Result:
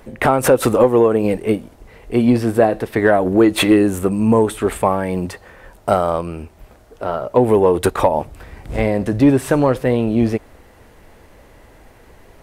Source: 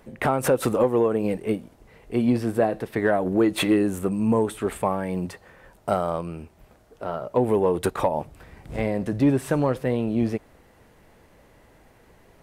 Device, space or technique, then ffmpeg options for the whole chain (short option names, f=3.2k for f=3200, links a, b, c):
low shelf boost with a cut just above: -af "lowshelf=f=69:g=5.5,equalizer=f=160:t=o:w=0.71:g=-5,volume=8dB"